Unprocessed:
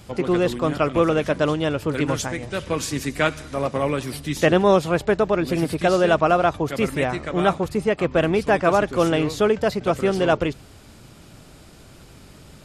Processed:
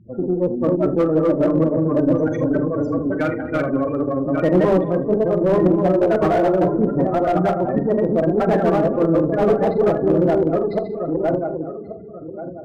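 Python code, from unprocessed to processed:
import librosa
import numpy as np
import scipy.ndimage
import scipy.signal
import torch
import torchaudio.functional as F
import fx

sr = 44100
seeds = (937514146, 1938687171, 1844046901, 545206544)

y = fx.reverse_delay_fb(x, sr, ms=568, feedback_pct=50, wet_db=-0.5)
y = scipy.signal.sosfilt(scipy.signal.butter(2, 81.0, 'highpass', fs=sr, output='sos'), y)
y = fx.spec_gate(y, sr, threshold_db=-10, keep='strong')
y = scipy.signal.sosfilt(scipy.signal.butter(2, 3000.0, 'lowpass', fs=sr, output='sos'), y)
y = fx.peak_eq(y, sr, hz=260.0, db=7.5, octaves=0.62)
y = fx.hum_notches(y, sr, base_hz=50, count=9)
y = fx.room_early_taps(y, sr, ms=(44, 78), db=(-9.5, -14.0))
y = fx.cheby_harmonics(y, sr, harmonics=(3, 5, 6), levels_db=(-30, -42, -29), full_scale_db=-3.5)
y = fx.echo_filtered(y, sr, ms=200, feedback_pct=28, hz=1400.0, wet_db=-13)
y = fx.slew_limit(y, sr, full_power_hz=130.0)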